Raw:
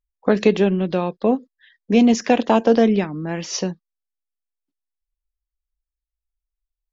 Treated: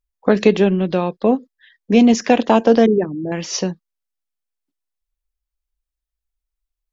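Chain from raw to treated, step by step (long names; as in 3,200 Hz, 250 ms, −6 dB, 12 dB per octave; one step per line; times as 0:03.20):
0:02.86–0:03.32: spectral envelope exaggerated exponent 3
level +2.5 dB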